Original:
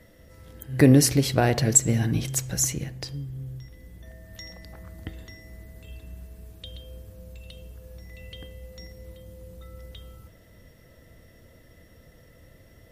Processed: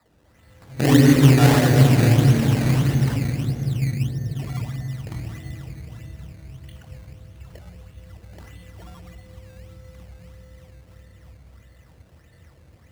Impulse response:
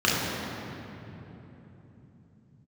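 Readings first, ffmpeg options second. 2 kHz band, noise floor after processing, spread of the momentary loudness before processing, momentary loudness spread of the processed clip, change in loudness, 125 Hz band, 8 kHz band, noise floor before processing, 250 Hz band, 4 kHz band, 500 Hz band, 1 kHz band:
+6.5 dB, −54 dBFS, 24 LU, 20 LU, +4.0 dB, +9.5 dB, −8.5 dB, −54 dBFS, +6.0 dB, +3.5 dB, +3.5 dB, +6.0 dB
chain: -filter_complex "[0:a]asuperstop=centerf=3500:order=20:qfactor=4.2,acrossover=split=3800[link_01][link_02];[link_02]acompressor=threshold=-39dB:ratio=4:attack=1:release=60[link_03];[link_01][link_03]amix=inputs=2:normalize=0,tiltshelf=frequency=1300:gain=-5,agate=range=-7dB:threshold=-43dB:ratio=16:detection=peak,highshelf=frequency=6000:gain=12,bandreject=frequency=60:width_type=h:width=6,bandreject=frequency=120:width_type=h:width=6[link_04];[1:a]atrim=start_sample=2205,asetrate=27783,aresample=44100[link_05];[link_04][link_05]afir=irnorm=-1:irlink=0,acrusher=samples=14:mix=1:aa=0.000001:lfo=1:lforange=14:lforate=1.6,volume=-15dB"

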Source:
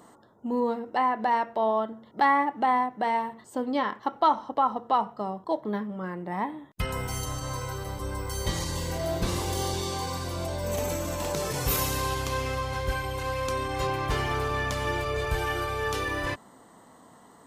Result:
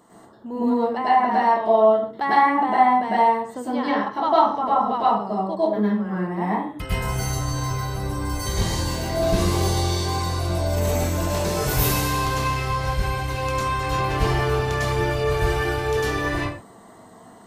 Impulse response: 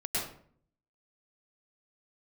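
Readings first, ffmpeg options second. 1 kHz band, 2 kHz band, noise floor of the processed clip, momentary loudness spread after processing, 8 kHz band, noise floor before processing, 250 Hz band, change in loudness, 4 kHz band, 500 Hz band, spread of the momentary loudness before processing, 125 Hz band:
+6.5 dB, +5.0 dB, −47 dBFS, 8 LU, +4.5 dB, −54 dBFS, +8.0 dB, +6.5 dB, +5.0 dB, +7.5 dB, 9 LU, +8.5 dB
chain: -filter_complex "[1:a]atrim=start_sample=2205,afade=type=out:start_time=0.32:duration=0.01,atrim=end_sample=14553[link_01];[0:a][link_01]afir=irnorm=-1:irlink=0"

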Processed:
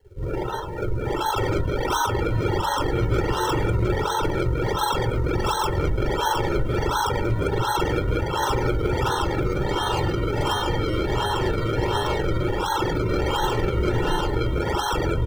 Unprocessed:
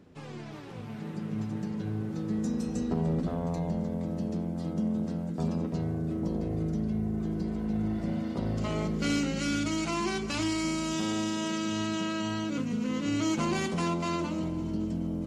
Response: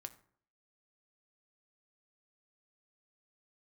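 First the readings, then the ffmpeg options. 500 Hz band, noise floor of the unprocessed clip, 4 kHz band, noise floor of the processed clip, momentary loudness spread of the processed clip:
+12.0 dB, −41 dBFS, +9.0 dB, −27 dBFS, 2 LU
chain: -filter_complex "[0:a]equalizer=frequency=270:width=1.9:gain=-11,asplit=2[link_01][link_02];[link_02]alimiter=level_in=6.5dB:limit=-24dB:level=0:latency=1,volume=-6.5dB,volume=1dB[link_03];[link_01][link_03]amix=inputs=2:normalize=0,lowpass=frequency=3000:width_type=q:width=0.5098,lowpass=frequency=3000:width_type=q:width=0.6013,lowpass=frequency=3000:width_type=q:width=0.9,lowpass=frequency=3000:width_type=q:width=2.563,afreqshift=-3500,acrusher=samples=35:mix=1:aa=0.000001:lfo=1:lforange=35:lforate=1.4,aecho=1:1:2.2:0.66,acompressor=threshold=-29dB:ratio=3,asplit=2[link_04][link_05];[1:a]atrim=start_sample=2205,adelay=44[link_06];[link_05][link_06]afir=irnorm=-1:irlink=0,volume=8.5dB[link_07];[link_04][link_07]amix=inputs=2:normalize=0,afftdn=noise_reduction=19:noise_floor=-36,adynamicequalizer=threshold=0.00708:dfrequency=630:dqfactor=1.4:tfrequency=630:tqfactor=1.4:attack=5:release=100:ratio=0.375:range=2:mode=cutabove:tftype=bell,volume=5dB"

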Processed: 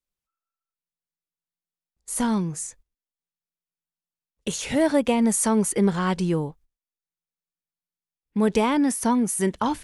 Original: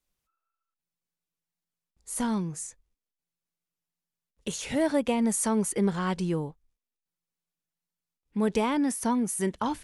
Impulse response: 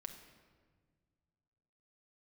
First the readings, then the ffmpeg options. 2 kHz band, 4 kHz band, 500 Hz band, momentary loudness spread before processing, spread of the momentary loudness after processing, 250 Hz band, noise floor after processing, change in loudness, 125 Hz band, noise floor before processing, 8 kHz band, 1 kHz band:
+5.0 dB, +5.0 dB, +5.0 dB, 11 LU, 11 LU, +5.0 dB, below −85 dBFS, +5.0 dB, +5.0 dB, below −85 dBFS, +5.0 dB, +5.0 dB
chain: -af "agate=range=-13dB:threshold=-54dB:ratio=16:detection=peak,volume=5dB"

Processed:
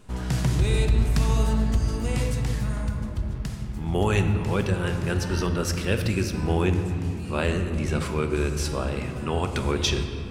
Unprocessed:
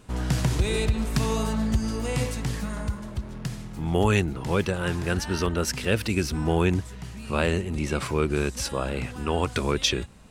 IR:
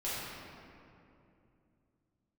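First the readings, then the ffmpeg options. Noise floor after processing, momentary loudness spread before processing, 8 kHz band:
−33 dBFS, 9 LU, −2.0 dB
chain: -filter_complex "[0:a]asplit=2[link_01][link_02];[1:a]atrim=start_sample=2205,lowshelf=frequency=110:gain=12[link_03];[link_02][link_03]afir=irnorm=-1:irlink=0,volume=-10dB[link_04];[link_01][link_04]amix=inputs=2:normalize=0,volume=-3.5dB"

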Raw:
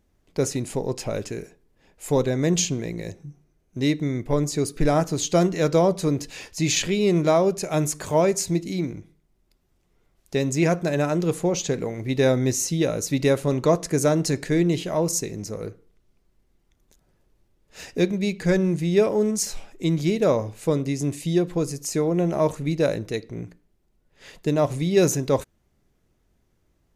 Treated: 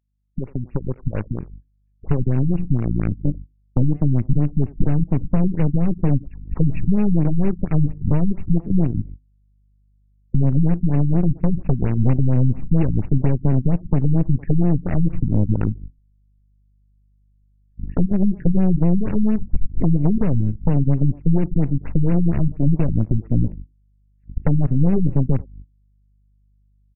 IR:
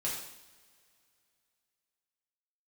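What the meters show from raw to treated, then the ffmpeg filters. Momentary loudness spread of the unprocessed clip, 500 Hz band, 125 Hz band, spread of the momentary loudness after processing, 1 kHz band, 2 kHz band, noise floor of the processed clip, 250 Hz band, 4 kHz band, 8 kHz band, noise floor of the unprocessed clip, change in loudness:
11 LU, −8.0 dB, +9.0 dB, 9 LU, −7.0 dB, below −10 dB, −59 dBFS, +4.0 dB, below −30 dB, below −40 dB, −67 dBFS, +2.5 dB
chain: -filter_complex "[0:a]afftdn=noise_reduction=12:noise_floor=-37,aeval=exprs='0.422*(cos(1*acos(clip(val(0)/0.422,-1,1)))-cos(1*PI/2))+0.00531*(cos(4*acos(clip(val(0)/0.422,-1,1)))-cos(4*PI/2))+0.0266*(cos(8*acos(clip(val(0)/0.422,-1,1)))-cos(8*PI/2))':channel_layout=same,highshelf=frequency=2300:gain=2.5,aeval=exprs='val(0)+0.00224*(sin(2*PI*50*n/s)+sin(2*PI*2*50*n/s)/2+sin(2*PI*3*50*n/s)/3+sin(2*PI*4*50*n/s)/4+sin(2*PI*5*50*n/s)/5)':channel_layout=same,acrossover=split=470[link_01][link_02];[link_02]acompressor=threshold=-28dB:ratio=8[link_03];[link_01][link_03]amix=inputs=2:normalize=0,agate=range=-27dB:threshold=-49dB:ratio=16:detection=peak,acrossover=split=330|1500|2400[link_04][link_05][link_06][link_07];[link_05]acrusher=bits=4:mix=0:aa=0.000001[link_08];[link_04][link_08][link_06][link_07]amix=inputs=4:normalize=0,acompressor=threshold=-36dB:ratio=6,asubboost=boost=8.5:cutoff=180,aeval=exprs='0.188*(cos(1*acos(clip(val(0)/0.188,-1,1)))-cos(1*PI/2))+0.0531*(cos(4*acos(clip(val(0)/0.188,-1,1)))-cos(4*PI/2))+0.00119*(cos(5*acos(clip(val(0)/0.188,-1,1)))-cos(5*PI/2))+0.00168*(cos(6*acos(clip(val(0)/0.188,-1,1)))-cos(6*PI/2))+0.0335*(cos(8*acos(clip(val(0)/0.188,-1,1)))-cos(8*PI/2))':channel_layout=same,asplit=2[link_09][link_10];[link_10]adelay=90,highpass=300,lowpass=3400,asoftclip=type=hard:threshold=-20dB,volume=-21dB[link_11];[link_09][link_11]amix=inputs=2:normalize=0,afftfilt=real='re*lt(b*sr/1024,260*pow(2900/260,0.5+0.5*sin(2*PI*4.3*pts/sr)))':imag='im*lt(b*sr/1024,260*pow(2900/260,0.5+0.5*sin(2*PI*4.3*pts/sr)))':win_size=1024:overlap=0.75,volume=5dB"

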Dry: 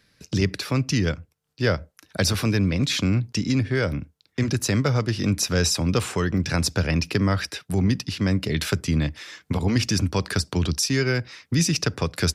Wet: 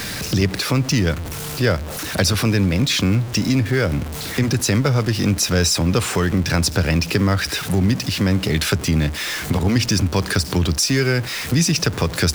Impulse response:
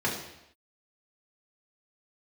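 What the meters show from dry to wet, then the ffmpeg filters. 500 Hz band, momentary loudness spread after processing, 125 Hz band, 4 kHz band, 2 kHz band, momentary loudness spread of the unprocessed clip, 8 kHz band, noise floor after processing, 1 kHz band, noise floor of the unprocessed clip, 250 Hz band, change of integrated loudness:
+4.5 dB, 5 LU, +4.5 dB, +5.5 dB, +5.5 dB, 6 LU, +5.5 dB, −29 dBFS, +5.5 dB, −71 dBFS, +4.5 dB, +4.5 dB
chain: -filter_complex "[0:a]aeval=exprs='val(0)+0.5*0.0355*sgn(val(0))':channel_layout=same,asplit=2[link_01][link_02];[link_02]acompressor=threshold=-28dB:ratio=6,volume=2dB[link_03];[link_01][link_03]amix=inputs=2:normalize=0"

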